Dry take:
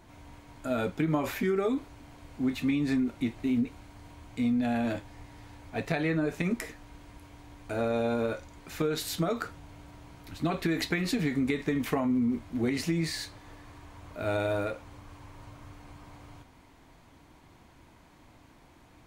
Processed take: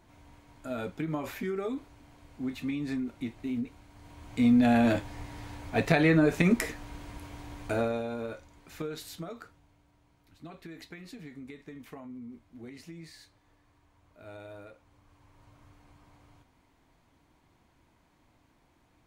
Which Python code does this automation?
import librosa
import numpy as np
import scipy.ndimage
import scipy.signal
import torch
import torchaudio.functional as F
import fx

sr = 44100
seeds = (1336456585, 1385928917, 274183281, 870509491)

y = fx.gain(x, sr, db=fx.line((3.87, -5.5), (4.54, 6.0), (7.66, 6.0), (8.06, -7.0), (8.8, -7.0), (9.83, -17.0), (14.67, -17.0), (15.59, -9.5)))